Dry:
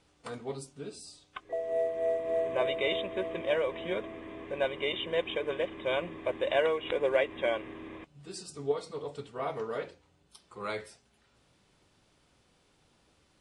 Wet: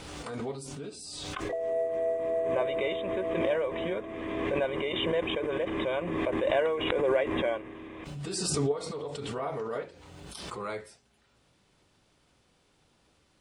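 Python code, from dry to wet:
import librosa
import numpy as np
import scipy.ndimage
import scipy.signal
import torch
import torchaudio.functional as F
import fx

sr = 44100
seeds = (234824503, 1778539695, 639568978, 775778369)

y = fx.dynamic_eq(x, sr, hz=3400.0, q=0.98, threshold_db=-50.0, ratio=4.0, max_db=-7)
y = fx.pre_swell(y, sr, db_per_s=26.0)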